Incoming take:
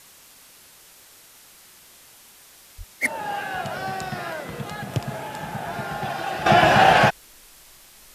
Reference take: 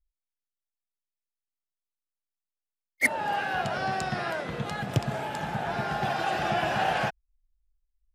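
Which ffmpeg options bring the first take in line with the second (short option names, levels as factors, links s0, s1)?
-filter_complex "[0:a]adeclick=t=4,asplit=3[s0][s1][s2];[s0]afade=t=out:st=2.77:d=0.02[s3];[s1]highpass=f=140:w=0.5412,highpass=f=140:w=1.3066,afade=t=in:st=2.77:d=0.02,afade=t=out:st=2.89:d=0.02[s4];[s2]afade=t=in:st=2.89:d=0.02[s5];[s3][s4][s5]amix=inputs=3:normalize=0,afwtdn=0.004,asetnsamples=n=441:p=0,asendcmd='6.46 volume volume -12dB',volume=1"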